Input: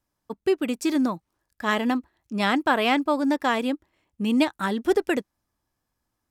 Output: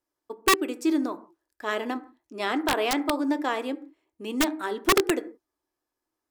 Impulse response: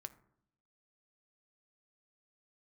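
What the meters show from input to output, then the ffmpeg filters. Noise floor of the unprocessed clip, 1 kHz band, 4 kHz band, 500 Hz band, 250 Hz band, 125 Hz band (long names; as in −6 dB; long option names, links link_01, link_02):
−81 dBFS, −2.0 dB, +0.5 dB, −2.5 dB, −4.0 dB, can't be measured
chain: -filter_complex "[0:a]lowshelf=frequency=240:width_type=q:width=3:gain=-10[link_01];[1:a]atrim=start_sample=2205,afade=type=out:start_time=0.23:duration=0.01,atrim=end_sample=10584[link_02];[link_01][link_02]afir=irnorm=-1:irlink=0,aeval=exprs='(mod(4.73*val(0)+1,2)-1)/4.73':channel_layout=same"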